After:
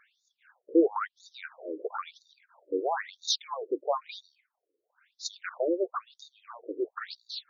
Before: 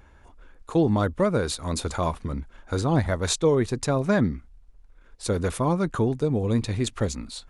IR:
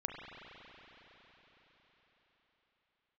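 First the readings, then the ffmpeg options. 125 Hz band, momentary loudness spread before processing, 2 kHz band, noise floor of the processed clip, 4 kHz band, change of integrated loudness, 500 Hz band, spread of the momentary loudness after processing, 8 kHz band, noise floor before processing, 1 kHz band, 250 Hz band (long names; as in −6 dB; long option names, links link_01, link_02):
below −40 dB, 7 LU, −6.5 dB, −85 dBFS, −1.5 dB, −7.0 dB, −6.0 dB, 18 LU, −9.0 dB, −53 dBFS, −4.5 dB, −9.0 dB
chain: -af "afftfilt=real='re*between(b*sr/1024,390*pow(5100/390,0.5+0.5*sin(2*PI*1*pts/sr))/1.41,390*pow(5100/390,0.5+0.5*sin(2*PI*1*pts/sr))*1.41)':imag='im*between(b*sr/1024,390*pow(5100/390,0.5+0.5*sin(2*PI*1*pts/sr))/1.41,390*pow(5100/390,0.5+0.5*sin(2*PI*1*pts/sr))*1.41)':win_size=1024:overlap=0.75,volume=1.5dB"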